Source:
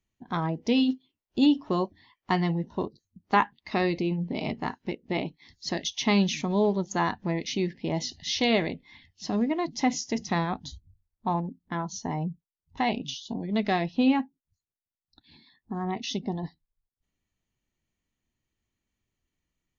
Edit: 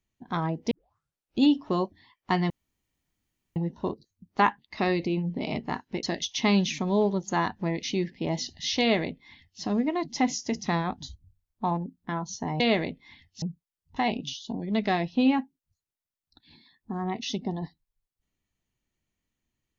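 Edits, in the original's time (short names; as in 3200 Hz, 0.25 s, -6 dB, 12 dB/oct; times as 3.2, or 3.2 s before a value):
0.71 tape start 0.70 s
2.5 insert room tone 1.06 s
4.97–5.66 cut
8.43–9.25 copy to 12.23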